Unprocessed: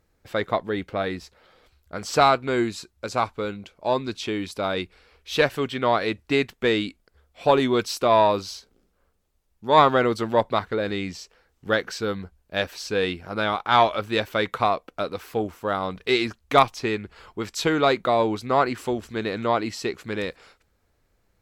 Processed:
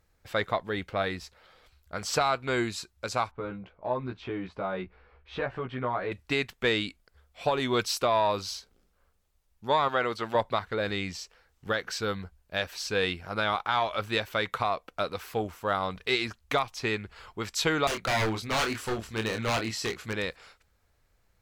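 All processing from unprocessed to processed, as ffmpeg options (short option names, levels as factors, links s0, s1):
-filter_complex "[0:a]asettb=1/sr,asplit=3[s0][s1][s2];[s0]atrim=end=3.314[s3];[s1]atrim=start=3.31:end=6.12,asetpts=PTS-STARTPTS,afade=t=in:d=0.004:c=qsin,afade=t=out:st=2.806:d=0.004:c=qsin,lowpass=1400,acompressor=threshold=0.0355:ratio=2:attack=3.2:release=140:knee=1:detection=peak,asplit=2[s4][s5];[s5]adelay=16,volume=0.708[s6];[s4][s6]amix=inputs=2:normalize=0,atrim=end_sample=123921[s7];[s2]atrim=start=6.116[s8];[s3][s7]acrossfade=d=0.004:c1=hsin:c2=qsin[s9];[s9][s8]acrossfade=d=0.004:c1=qsin:c2=hsin,asettb=1/sr,asplit=3[s10][s11][s12];[s10]atrim=end=9.884[s13];[s11]atrim=start=9.88:end=10.35,asetpts=PTS-STARTPTS,afade=t=in:d=0.004:c=qsin,afade=t=out:st=0.466:d=0.004:c=qsin,acrossover=split=4400[s14][s15];[s15]acompressor=threshold=0.00282:ratio=4:attack=1:release=60[s16];[s14][s16]amix=inputs=2:normalize=0,lowshelf=f=240:g=-10[s17];[s12]atrim=start=10.346[s18];[s13][s17]acrossfade=d=0.004:c1=hsin:c2=qsin[s19];[s19][s18]acrossfade=d=0.004:c1=qsin:c2=hsin,asettb=1/sr,asplit=3[s20][s21][s22];[s20]atrim=end=17.874[s23];[s21]atrim=start=17.87:end=20.13,asetpts=PTS-STARTPTS,afade=t=in:d=0.004:c=qsin,afade=t=out:st=2.256:d=0.004:c=qsin,aeval=exprs='0.0944*(abs(mod(val(0)/0.0944+3,4)-2)-1)':c=same,asplit=2[s24][s25];[s25]adelay=27,volume=0.531[s26];[s24][s26]amix=inputs=2:normalize=0,atrim=end_sample=99666[s27];[s22]atrim=start=20.126[s28];[s23][s27]acrossfade=d=0.004:c1=hsin:c2=qsin[s29];[s29][s28]acrossfade=d=0.004:c1=qsin:c2=hsin,equalizer=f=300:t=o:w=1.8:g=-7,alimiter=limit=0.2:level=0:latency=1:release=223"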